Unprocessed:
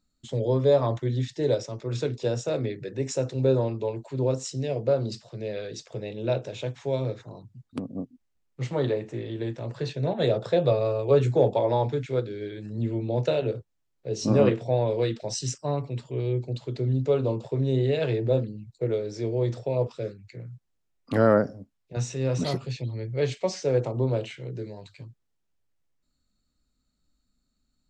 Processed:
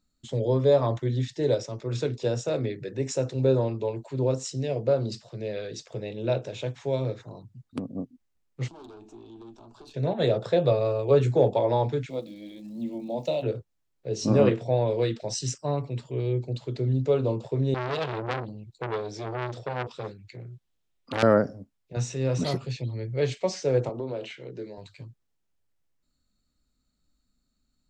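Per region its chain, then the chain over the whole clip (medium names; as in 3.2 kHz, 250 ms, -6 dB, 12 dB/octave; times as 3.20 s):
8.68–9.94 s: valve stage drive 30 dB, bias 0.5 + compression 2.5:1, threshold -42 dBFS + static phaser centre 520 Hz, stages 6
12.09–13.42 s: crackle 570 per s -53 dBFS + static phaser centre 410 Hz, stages 6
17.74–21.23 s: peaking EQ 3.4 kHz +6 dB 0.73 oct + transformer saturation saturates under 3 kHz
23.89–24.78 s: band-pass 220–6000 Hz + compression 3:1, threshold -29 dBFS
whole clip: none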